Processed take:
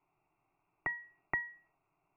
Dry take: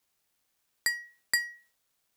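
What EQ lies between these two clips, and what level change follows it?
linear-phase brick-wall low-pass 2,800 Hz
high-frequency loss of the air 240 metres
phaser with its sweep stopped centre 340 Hz, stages 8
+11.5 dB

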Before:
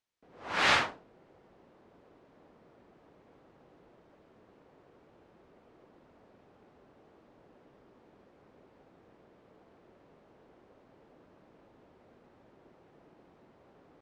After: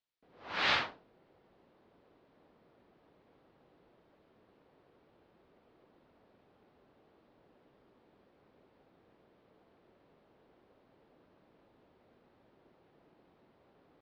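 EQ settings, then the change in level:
transistor ladder low-pass 5,300 Hz, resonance 35%
+1.5 dB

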